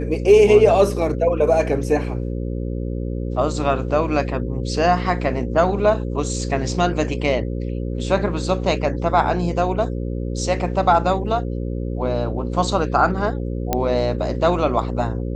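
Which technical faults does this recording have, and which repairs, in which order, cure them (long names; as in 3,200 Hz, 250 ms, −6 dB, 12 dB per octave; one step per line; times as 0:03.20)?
mains buzz 60 Hz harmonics 9 −25 dBFS
0:13.73: click −5 dBFS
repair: click removal
hum removal 60 Hz, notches 9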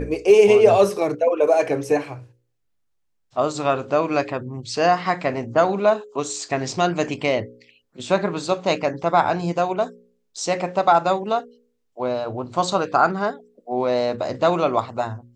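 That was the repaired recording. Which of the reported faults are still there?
none of them is left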